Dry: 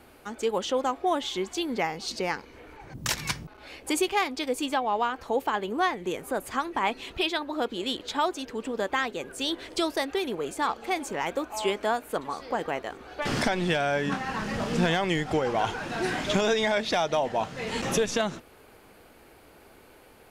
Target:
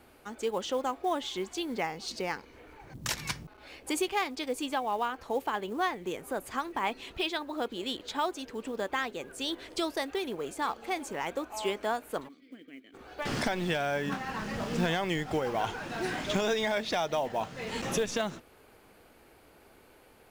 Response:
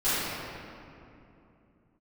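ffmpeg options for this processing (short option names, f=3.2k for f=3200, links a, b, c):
-filter_complex "[0:a]asplit=3[a][b][c];[a]afade=t=out:st=12.27:d=0.02[d];[b]asplit=3[e][f][g];[e]bandpass=f=270:t=q:w=8,volume=0dB[h];[f]bandpass=f=2.29k:t=q:w=8,volume=-6dB[i];[g]bandpass=f=3.01k:t=q:w=8,volume=-9dB[j];[h][i][j]amix=inputs=3:normalize=0,afade=t=in:st=12.27:d=0.02,afade=t=out:st=12.93:d=0.02[k];[c]afade=t=in:st=12.93:d=0.02[l];[d][k][l]amix=inputs=3:normalize=0,acrusher=bits=7:mode=log:mix=0:aa=0.000001,volume=-4.5dB"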